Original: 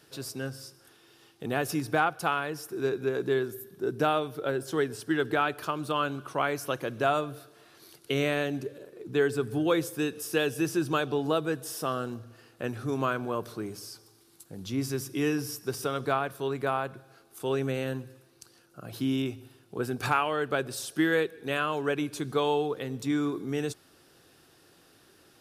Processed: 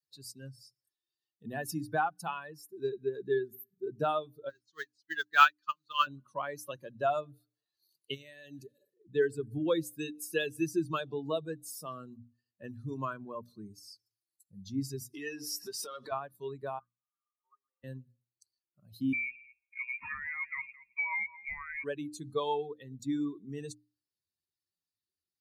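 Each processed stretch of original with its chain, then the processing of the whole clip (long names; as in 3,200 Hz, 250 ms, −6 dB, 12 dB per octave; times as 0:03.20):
0:04.49–0:06.07: noise that follows the level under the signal 18 dB + flat-topped bell 2,700 Hz +12 dB 2.9 octaves + expander for the loud parts 2.5 to 1, over −27 dBFS
0:08.14–0:08.94: high-shelf EQ 2,400 Hz +8.5 dB + downward compressor 10 to 1, threshold −30 dBFS
0:15.14–0:16.12: downward compressor 5 to 1, threshold −43 dBFS + mid-hump overdrive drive 26 dB, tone 4,200 Hz, clips at −17 dBFS + double-tracking delay 20 ms −12 dB
0:16.79–0:17.84: linear delta modulator 32 kbit/s, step −39 dBFS + resonant band-pass 1,200 Hz, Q 14
0:19.13–0:21.84: downward compressor 3 to 1, threshold −28 dBFS + single-tap delay 219 ms −10 dB + voice inversion scrambler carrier 2,600 Hz
whole clip: spectral dynamics exaggerated over time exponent 2; low-shelf EQ 63 Hz −7 dB; mains-hum notches 60/120/180/240/300 Hz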